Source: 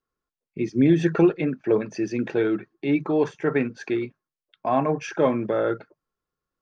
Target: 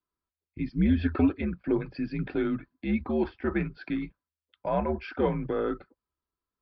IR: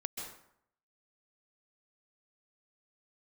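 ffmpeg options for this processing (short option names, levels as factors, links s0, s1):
-af "afreqshift=-80,aresample=11025,aresample=44100,volume=0.531"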